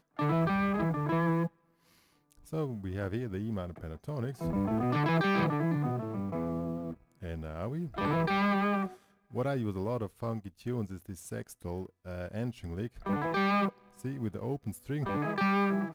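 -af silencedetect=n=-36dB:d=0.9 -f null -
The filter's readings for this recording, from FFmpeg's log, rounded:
silence_start: 1.47
silence_end: 2.53 | silence_duration: 1.06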